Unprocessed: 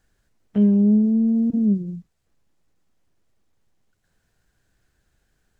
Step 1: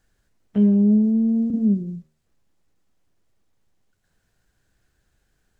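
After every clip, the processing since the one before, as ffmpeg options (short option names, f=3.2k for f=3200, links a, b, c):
-af "bandreject=f=77.1:t=h:w=4,bandreject=f=154.2:t=h:w=4,bandreject=f=231.3:t=h:w=4,bandreject=f=308.4:t=h:w=4,bandreject=f=385.5:t=h:w=4,bandreject=f=462.6:t=h:w=4,bandreject=f=539.7:t=h:w=4,bandreject=f=616.8:t=h:w=4,bandreject=f=693.9:t=h:w=4,bandreject=f=771:t=h:w=4,bandreject=f=848.1:t=h:w=4,bandreject=f=925.2:t=h:w=4,bandreject=f=1.0023k:t=h:w=4,bandreject=f=1.0794k:t=h:w=4,bandreject=f=1.1565k:t=h:w=4,bandreject=f=1.2336k:t=h:w=4,bandreject=f=1.3107k:t=h:w=4,bandreject=f=1.3878k:t=h:w=4,bandreject=f=1.4649k:t=h:w=4,bandreject=f=1.542k:t=h:w=4,bandreject=f=1.6191k:t=h:w=4,bandreject=f=1.6962k:t=h:w=4,bandreject=f=1.7733k:t=h:w=4,bandreject=f=1.8504k:t=h:w=4,bandreject=f=1.9275k:t=h:w=4,bandreject=f=2.0046k:t=h:w=4,bandreject=f=2.0817k:t=h:w=4,bandreject=f=2.1588k:t=h:w=4,bandreject=f=2.2359k:t=h:w=4,bandreject=f=2.313k:t=h:w=4,bandreject=f=2.3901k:t=h:w=4,bandreject=f=2.4672k:t=h:w=4,bandreject=f=2.5443k:t=h:w=4,bandreject=f=2.6214k:t=h:w=4"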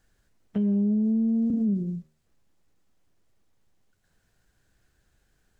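-af "alimiter=limit=-19.5dB:level=0:latency=1:release=53"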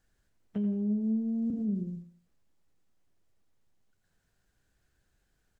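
-af "aecho=1:1:87|174|261:0.282|0.0817|0.0237,volume=-6dB"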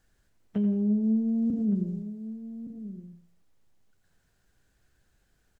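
-filter_complex "[0:a]asplit=2[a][b];[b]adelay=1166,volume=-13dB,highshelf=f=4k:g=-26.2[c];[a][c]amix=inputs=2:normalize=0,volume=4.5dB"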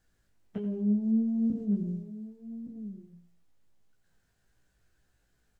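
-af "flanger=delay=16.5:depth=3.6:speed=1.5"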